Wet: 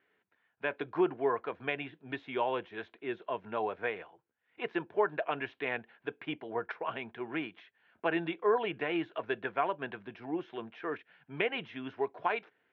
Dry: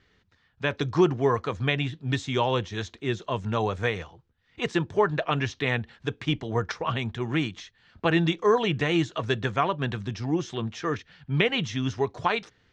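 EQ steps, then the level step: cabinet simulation 500–2200 Hz, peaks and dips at 520 Hz -5 dB, 850 Hz -4 dB, 1.2 kHz -10 dB, 1.9 kHz -7 dB; 0.0 dB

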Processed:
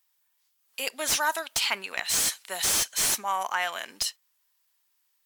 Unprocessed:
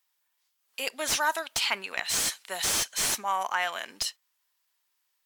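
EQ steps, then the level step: treble shelf 7.4 kHz +5.5 dB; 0.0 dB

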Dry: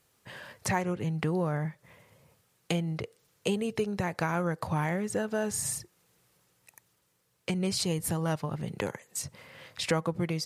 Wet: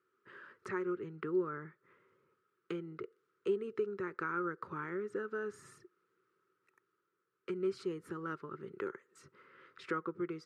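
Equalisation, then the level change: two resonant band-passes 710 Hz, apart 1.8 oct; +3.0 dB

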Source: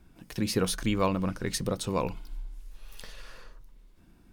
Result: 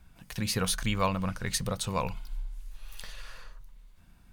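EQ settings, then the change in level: peaking EQ 330 Hz -14 dB 1.1 oct; band-stop 5.3 kHz, Q 18; +2.5 dB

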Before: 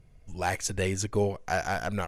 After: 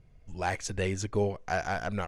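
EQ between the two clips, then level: distance through air 56 m; -1.5 dB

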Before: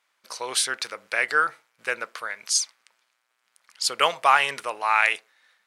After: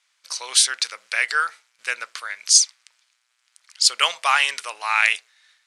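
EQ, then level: frequency weighting ITU-R 468; -3.0 dB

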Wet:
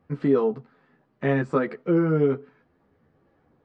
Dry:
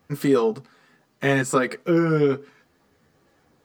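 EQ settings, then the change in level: tape spacing loss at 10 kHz 40 dB; 0.0 dB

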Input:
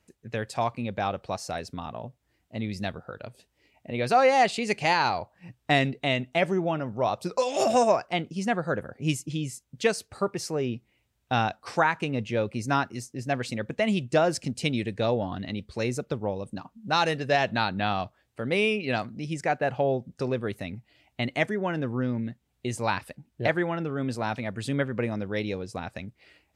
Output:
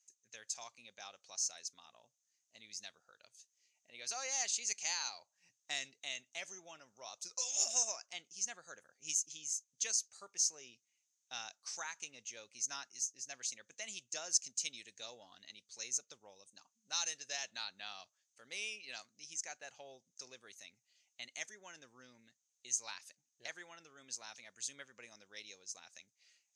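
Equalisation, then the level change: band-pass filter 6.4 kHz, Q 9.7; +12.0 dB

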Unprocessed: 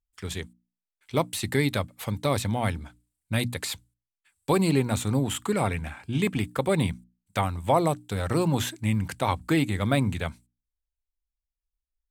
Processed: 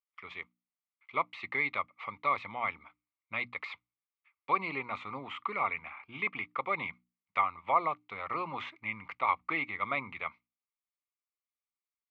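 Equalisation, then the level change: two resonant band-passes 1.6 kHz, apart 0.86 oct; distance through air 260 m; +7.5 dB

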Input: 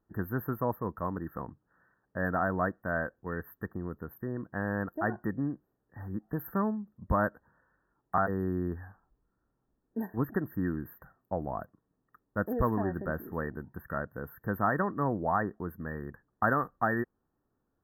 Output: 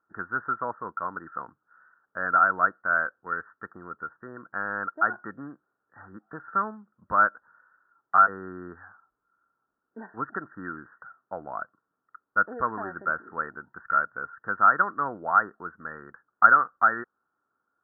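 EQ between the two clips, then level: high-pass 610 Hz 6 dB/octave; resonant low-pass 1.4 kHz, resonance Q 11; distance through air 350 m; 0.0 dB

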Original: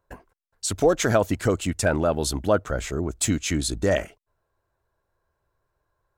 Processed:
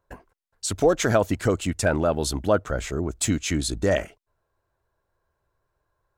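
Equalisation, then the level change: treble shelf 9.2 kHz -3 dB; 0.0 dB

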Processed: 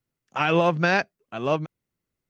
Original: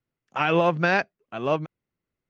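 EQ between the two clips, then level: tone controls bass +2 dB, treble +6 dB; 0.0 dB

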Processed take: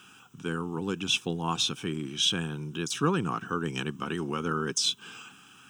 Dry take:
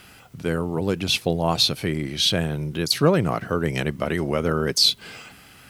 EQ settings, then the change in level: high-pass 200 Hz 12 dB/octave; static phaser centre 3 kHz, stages 8; -2.0 dB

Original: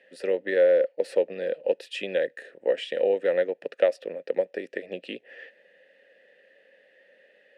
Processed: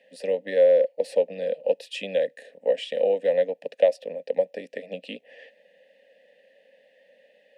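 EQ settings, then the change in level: static phaser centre 360 Hz, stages 6; +3.0 dB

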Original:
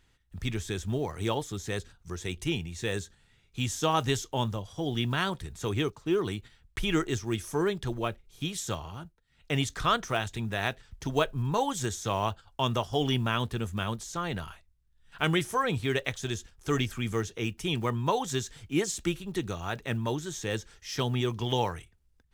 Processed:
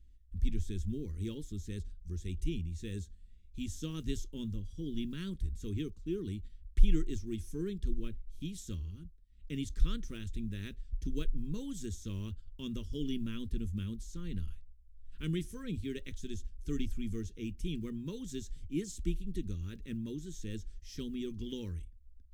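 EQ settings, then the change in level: amplifier tone stack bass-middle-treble 10-0-1; bass shelf 290 Hz +12 dB; static phaser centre 300 Hz, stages 4; +8.0 dB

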